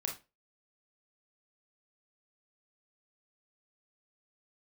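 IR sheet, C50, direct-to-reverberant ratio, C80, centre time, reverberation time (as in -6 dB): 8.5 dB, 0.5 dB, 16.5 dB, 21 ms, 0.30 s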